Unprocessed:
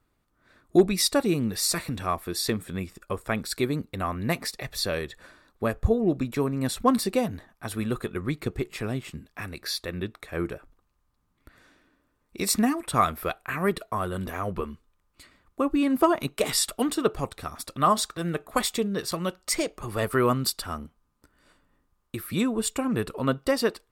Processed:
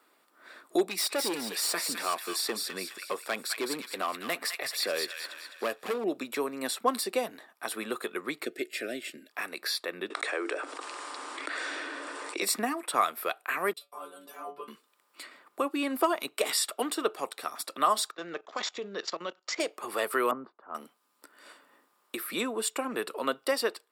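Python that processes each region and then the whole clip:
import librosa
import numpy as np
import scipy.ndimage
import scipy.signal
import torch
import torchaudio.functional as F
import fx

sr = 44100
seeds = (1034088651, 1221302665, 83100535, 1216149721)

y = fx.chain(x, sr, fx.clip_hard(threshold_db=-23.0),
    fx.echo_wet_highpass(ms=208, feedback_pct=37, hz=1800.0, wet_db=-4.0), at=(0.85, 6.04))
y = fx.chain(y, sr, fx.cheby1_bandstop(low_hz=620.0, high_hz=1600.0, order=2),
    fx.comb(ms=3.3, depth=0.34), at=(8.45, 9.3))
y = fx.chain(y, sr, fx.block_float(bits=7),
    fx.cheby1_bandpass(low_hz=280.0, high_hz=9200.0, order=5),
    fx.env_flatten(amount_pct=70), at=(10.1, 12.42))
y = fx.chain(y, sr, fx.peak_eq(hz=1900.0, db=-10.5, octaves=0.47),
    fx.stiff_resonator(f0_hz=140.0, decay_s=0.3, stiffness=0.002),
    fx.band_widen(depth_pct=100), at=(13.73, 14.68))
y = fx.chain(y, sr, fx.high_shelf(hz=9700.0, db=-4.5),
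    fx.level_steps(step_db=16),
    fx.resample_bad(factor=3, down='none', up='filtered'), at=(18.11, 19.6))
y = fx.chain(y, sr, fx.lowpass(hz=1200.0, slope=24),
    fx.band_widen(depth_pct=100), at=(20.31, 20.75))
y = scipy.signal.sosfilt(scipy.signal.bessel(4, 460.0, 'highpass', norm='mag', fs=sr, output='sos'), y)
y = fx.notch(y, sr, hz=6300.0, q=7.7)
y = fx.band_squash(y, sr, depth_pct=40)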